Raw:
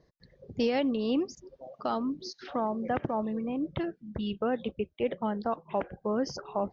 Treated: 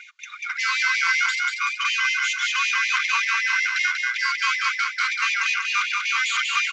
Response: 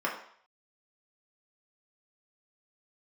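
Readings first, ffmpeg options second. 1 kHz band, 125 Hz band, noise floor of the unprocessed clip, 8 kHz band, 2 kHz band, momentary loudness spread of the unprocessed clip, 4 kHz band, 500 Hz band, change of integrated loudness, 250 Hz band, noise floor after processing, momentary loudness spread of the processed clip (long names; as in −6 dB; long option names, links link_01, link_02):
+8.0 dB, below −40 dB, −68 dBFS, can't be measured, +27.0 dB, 8 LU, +19.0 dB, below −40 dB, +11.0 dB, below −40 dB, −41 dBFS, 3 LU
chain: -filter_complex "[0:a]highpass=330,aecho=1:1:3.1:0.81,acrusher=bits=3:mode=log:mix=0:aa=0.000001,aeval=exprs='val(0)*sin(2*PI*1800*n/s)':channel_layout=same,asplit=2[link_01][link_02];[link_02]highpass=frequency=720:poles=1,volume=35dB,asoftclip=type=tanh:threshold=-17dB[link_03];[link_01][link_03]amix=inputs=2:normalize=0,lowpass=frequency=2400:poles=1,volume=-6dB,aecho=1:1:190|380|570|760|950|1140:0.631|0.297|0.139|0.0655|0.0308|0.0145,aresample=16000,aresample=44100,afftfilt=real='re*gte(b*sr/1024,900*pow(1800/900,0.5+0.5*sin(2*PI*5.3*pts/sr)))':imag='im*gte(b*sr/1024,900*pow(1800/900,0.5+0.5*sin(2*PI*5.3*pts/sr)))':win_size=1024:overlap=0.75,volume=3.5dB"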